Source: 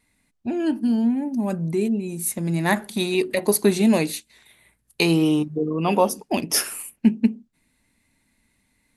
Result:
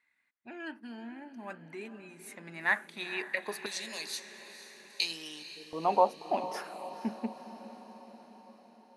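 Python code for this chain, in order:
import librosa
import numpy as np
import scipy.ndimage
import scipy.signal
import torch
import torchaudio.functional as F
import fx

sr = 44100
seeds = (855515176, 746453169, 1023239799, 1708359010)

y = fx.bandpass_q(x, sr, hz=fx.steps((0.0, 1700.0), (3.66, 5000.0), (5.73, 800.0)), q=2.0)
y = fx.echo_diffused(y, sr, ms=480, feedback_pct=61, wet_db=-13.0)
y = F.gain(torch.from_numpy(y), -1.5).numpy()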